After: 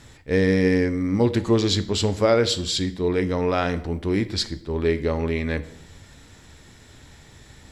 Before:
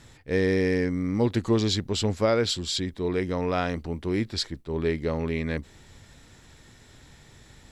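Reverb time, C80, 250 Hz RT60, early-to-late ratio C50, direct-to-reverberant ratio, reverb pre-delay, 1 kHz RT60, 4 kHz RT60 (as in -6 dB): 0.65 s, 18.0 dB, 0.80 s, 15.5 dB, 10.5 dB, 4 ms, 0.65 s, 0.55 s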